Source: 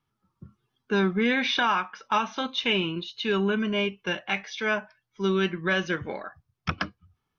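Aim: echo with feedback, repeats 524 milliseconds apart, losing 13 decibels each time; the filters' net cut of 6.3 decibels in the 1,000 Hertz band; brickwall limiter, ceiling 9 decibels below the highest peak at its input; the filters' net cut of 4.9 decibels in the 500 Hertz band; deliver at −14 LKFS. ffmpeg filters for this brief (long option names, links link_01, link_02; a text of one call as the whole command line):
ffmpeg -i in.wav -af "equalizer=frequency=500:width_type=o:gain=-5.5,equalizer=frequency=1000:width_type=o:gain=-7,alimiter=limit=-23.5dB:level=0:latency=1,aecho=1:1:524|1048|1572:0.224|0.0493|0.0108,volume=19.5dB" out.wav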